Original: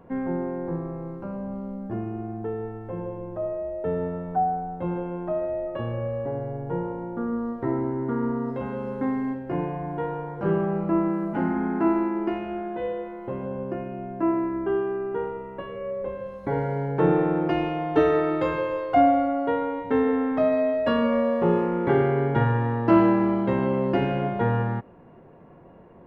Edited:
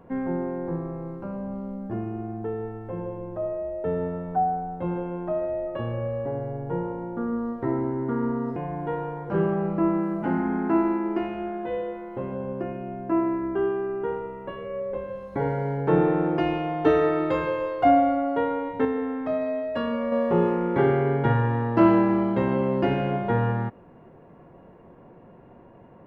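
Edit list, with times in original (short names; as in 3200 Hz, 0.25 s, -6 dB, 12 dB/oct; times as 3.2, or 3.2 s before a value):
8.56–9.67 cut
19.96–21.23 gain -5 dB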